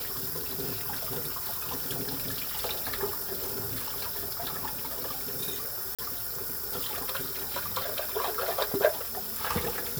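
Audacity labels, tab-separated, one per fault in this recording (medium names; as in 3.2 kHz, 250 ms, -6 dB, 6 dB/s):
5.950000	5.990000	dropout 36 ms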